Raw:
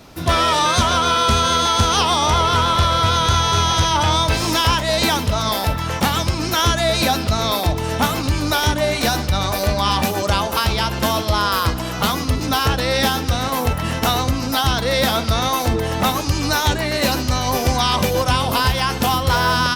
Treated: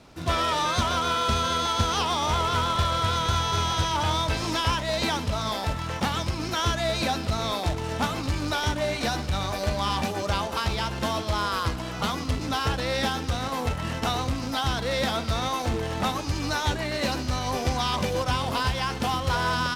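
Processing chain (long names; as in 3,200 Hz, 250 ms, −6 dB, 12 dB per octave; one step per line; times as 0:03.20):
log-companded quantiser 4 bits
high-frequency loss of the air 52 metres
level −8 dB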